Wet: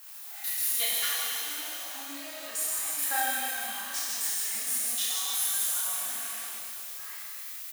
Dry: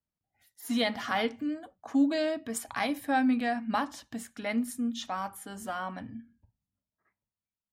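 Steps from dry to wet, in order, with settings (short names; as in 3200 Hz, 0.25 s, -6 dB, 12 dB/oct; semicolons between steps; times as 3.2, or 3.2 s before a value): zero-crossing step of -35 dBFS; HPF 1100 Hz 12 dB/oct; high shelf 10000 Hz +12 dB; vocal rider within 4 dB 2 s; limiter -23.5 dBFS, peak gain reduction 8.5 dB; level quantiser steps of 17 dB; doubler 32 ms -5 dB; on a send: thin delay 0.154 s, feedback 72%, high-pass 3300 Hz, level -4 dB; on the sum: shimmer reverb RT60 2.3 s, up +12 st, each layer -8 dB, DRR -6.5 dB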